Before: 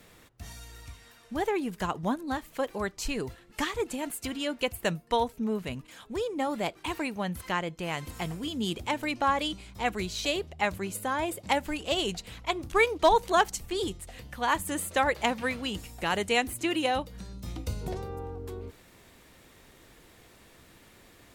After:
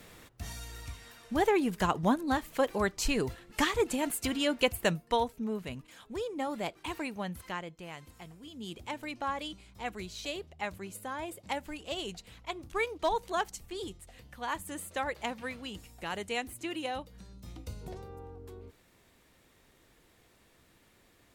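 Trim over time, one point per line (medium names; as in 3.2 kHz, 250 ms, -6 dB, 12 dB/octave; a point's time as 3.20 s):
4.66 s +2.5 dB
5.43 s -4.5 dB
7.21 s -4.5 dB
8.34 s -16 dB
8.83 s -8.5 dB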